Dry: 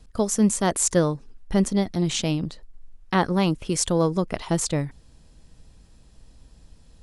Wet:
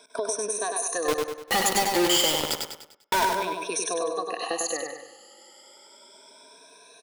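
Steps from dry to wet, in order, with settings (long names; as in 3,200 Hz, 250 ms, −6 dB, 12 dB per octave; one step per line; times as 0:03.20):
rippled gain that drifts along the octave scale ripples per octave 1.6, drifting +0.31 Hz, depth 24 dB
high-pass filter 400 Hz 24 dB per octave
brickwall limiter −12 dBFS, peak gain reduction 10 dB
downward compressor 4 to 1, threshold −35 dBFS, peak gain reduction 15 dB
0:01.08–0:03.26: log-companded quantiser 2 bits
repeating echo 99 ms, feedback 43%, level −4 dB
on a send at −12 dB: convolution reverb, pre-delay 77 ms
on the sum: level +5.5 dB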